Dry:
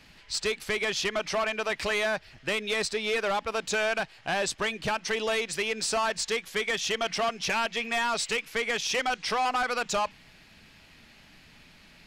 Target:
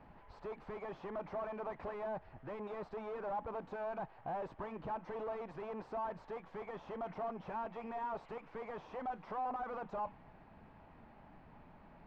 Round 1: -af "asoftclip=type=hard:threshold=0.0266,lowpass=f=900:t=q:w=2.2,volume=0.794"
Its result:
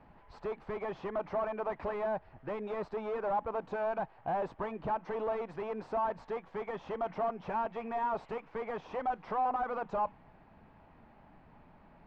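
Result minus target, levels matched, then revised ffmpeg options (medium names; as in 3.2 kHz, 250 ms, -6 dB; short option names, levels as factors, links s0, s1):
hard clipper: distortion -4 dB
-af "asoftclip=type=hard:threshold=0.0106,lowpass=f=900:t=q:w=2.2,volume=0.794"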